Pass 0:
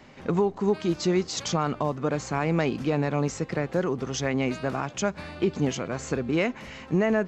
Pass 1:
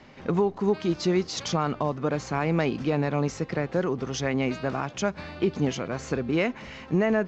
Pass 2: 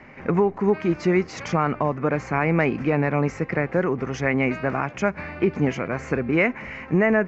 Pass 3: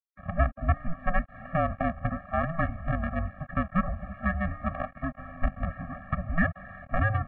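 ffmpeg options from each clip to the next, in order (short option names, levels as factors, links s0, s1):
-af "lowpass=f=6400:w=0.5412,lowpass=f=6400:w=1.3066"
-af "highshelf=f=2800:t=q:w=3:g=-8,volume=1.5"
-af "acrusher=bits=3:dc=4:mix=0:aa=0.000001,highpass=f=250:t=q:w=0.5412,highpass=f=250:t=q:w=1.307,lowpass=f=2100:t=q:w=0.5176,lowpass=f=2100:t=q:w=0.7071,lowpass=f=2100:t=q:w=1.932,afreqshift=-340,afftfilt=real='re*eq(mod(floor(b*sr/1024/270),2),0)':imag='im*eq(mod(floor(b*sr/1024/270),2),0)':win_size=1024:overlap=0.75"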